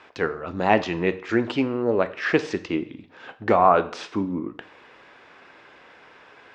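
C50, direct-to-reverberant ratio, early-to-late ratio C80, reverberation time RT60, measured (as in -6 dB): 16.0 dB, 11.0 dB, 19.5 dB, 0.50 s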